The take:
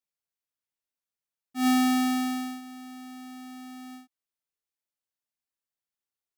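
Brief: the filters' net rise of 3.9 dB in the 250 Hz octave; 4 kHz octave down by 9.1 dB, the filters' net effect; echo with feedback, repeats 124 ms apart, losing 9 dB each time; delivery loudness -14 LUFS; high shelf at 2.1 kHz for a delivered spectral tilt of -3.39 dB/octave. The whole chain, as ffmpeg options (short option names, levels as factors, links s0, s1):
-af "equalizer=f=250:t=o:g=4,highshelf=f=2100:g=-7,equalizer=f=4000:t=o:g=-5.5,aecho=1:1:124|248|372|496:0.355|0.124|0.0435|0.0152,volume=3.35"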